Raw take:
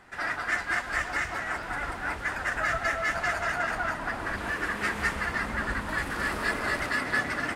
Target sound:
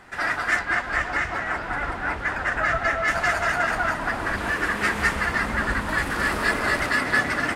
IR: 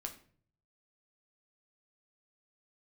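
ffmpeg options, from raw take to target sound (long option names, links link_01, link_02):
-filter_complex "[0:a]asettb=1/sr,asplit=3[link_01][link_02][link_03];[link_01]atrim=end=0.594[link_04];[link_02]atrim=start=0.59:end=3.08,asetpts=PTS-STARTPTS,afade=type=in:duration=0.004:curve=qsin,afade=type=out:start_time=2.486:duration=0.004:curve=qsin,lowpass=frequency=2900:poles=1[link_05];[link_03]atrim=start=3.076[link_06];[link_04][link_05]acrossfade=duration=0.004:curve1=hsin:curve2=qsin[link_07];[link_07][link_06]acrossfade=duration=0.004:curve1=qsin:curve2=hsin,volume=6dB"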